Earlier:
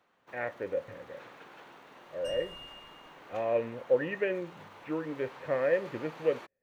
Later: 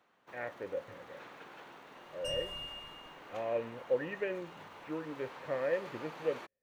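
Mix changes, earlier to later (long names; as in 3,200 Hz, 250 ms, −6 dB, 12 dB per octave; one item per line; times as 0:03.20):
speech −5.5 dB
second sound +4.5 dB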